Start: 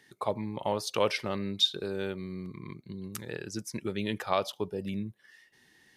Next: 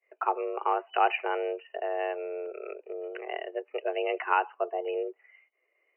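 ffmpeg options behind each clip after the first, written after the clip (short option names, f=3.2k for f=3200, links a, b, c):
-af "agate=range=-33dB:threshold=-52dB:ratio=3:detection=peak,afreqshift=260,afftfilt=real='re*between(b*sr/4096,290,3000)':imag='im*between(b*sr/4096,290,3000)':win_size=4096:overlap=0.75,volume=3dB"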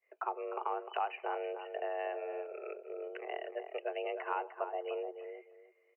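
-filter_complex "[0:a]acrossover=split=470|1100[a][b][c];[a]acompressor=threshold=-47dB:ratio=4[d];[b]acompressor=threshold=-32dB:ratio=4[e];[c]acompressor=threshold=-42dB:ratio=4[f];[d][e][f]amix=inputs=3:normalize=0,asplit=2[g][h];[h]adelay=302,lowpass=f=1.2k:p=1,volume=-6.5dB,asplit=2[i][j];[j]adelay=302,lowpass=f=1.2k:p=1,volume=0.23,asplit=2[k][l];[l]adelay=302,lowpass=f=1.2k:p=1,volume=0.23[m];[i][k][m]amix=inputs=3:normalize=0[n];[g][n]amix=inputs=2:normalize=0,volume=-3.5dB"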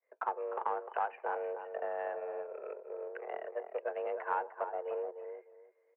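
-af "aeval=exprs='if(lt(val(0),0),0.708*val(0),val(0))':c=same,adynamicsmooth=sensitivity=3:basefreq=1.8k,highpass=f=240:w=0.5412,highpass=f=240:w=1.3066,equalizer=f=350:t=q:w=4:g=-5,equalizer=f=510:t=q:w=4:g=9,equalizer=f=950:t=q:w=4:g=8,equalizer=f=1.6k:t=q:w=4:g=9,lowpass=f=2.7k:w=0.5412,lowpass=f=2.7k:w=1.3066,volume=-1.5dB"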